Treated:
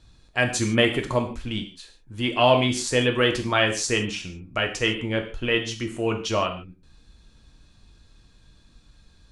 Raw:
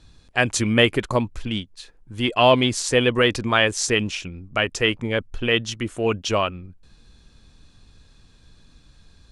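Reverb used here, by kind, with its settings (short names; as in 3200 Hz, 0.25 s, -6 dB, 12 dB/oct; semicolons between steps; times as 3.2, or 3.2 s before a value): non-linear reverb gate 0.18 s falling, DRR 3.5 dB; gain -4 dB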